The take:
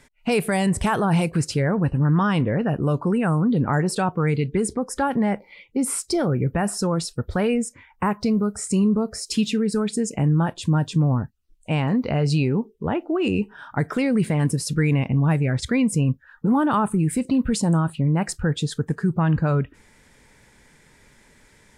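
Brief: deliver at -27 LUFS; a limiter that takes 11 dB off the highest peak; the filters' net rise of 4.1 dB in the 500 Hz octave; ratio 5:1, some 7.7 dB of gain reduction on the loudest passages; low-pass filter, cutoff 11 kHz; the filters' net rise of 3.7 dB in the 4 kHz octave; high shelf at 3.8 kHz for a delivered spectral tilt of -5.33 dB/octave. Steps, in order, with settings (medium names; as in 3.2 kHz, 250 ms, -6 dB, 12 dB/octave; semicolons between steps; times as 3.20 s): low-pass 11 kHz; peaking EQ 500 Hz +5 dB; treble shelf 3.8 kHz -3.5 dB; peaking EQ 4 kHz +7.5 dB; compression 5:1, threshold -23 dBFS; trim +4.5 dB; peak limiter -18 dBFS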